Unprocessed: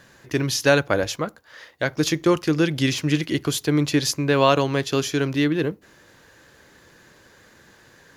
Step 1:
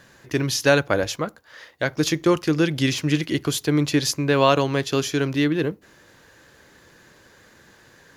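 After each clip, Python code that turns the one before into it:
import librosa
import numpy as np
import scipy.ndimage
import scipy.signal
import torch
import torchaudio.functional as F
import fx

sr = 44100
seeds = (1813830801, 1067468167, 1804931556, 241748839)

y = x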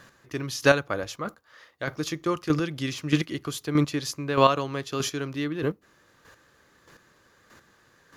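y = fx.peak_eq(x, sr, hz=1200.0, db=8.5, octaves=0.25)
y = fx.chopper(y, sr, hz=1.6, depth_pct=60, duty_pct=15)
y = y * 10.0 ** (-1.0 / 20.0)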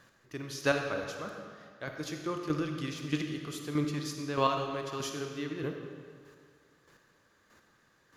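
y = fx.rev_freeverb(x, sr, rt60_s=1.9, hf_ratio=0.85, predelay_ms=10, drr_db=3.5)
y = y * 10.0 ** (-9.0 / 20.0)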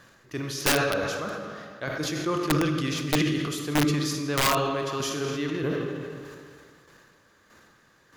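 y = (np.mod(10.0 ** (22.0 / 20.0) * x + 1.0, 2.0) - 1.0) / 10.0 ** (22.0 / 20.0)
y = fx.sustainer(y, sr, db_per_s=27.0)
y = y * 10.0 ** (6.5 / 20.0)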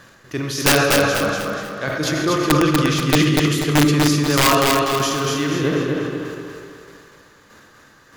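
y = fx.echo_feedback(x, sr, ms=243, feedback_pct=39, wet_db=-3.5)
y = y * 10.0 ** (7.5 / 20.0)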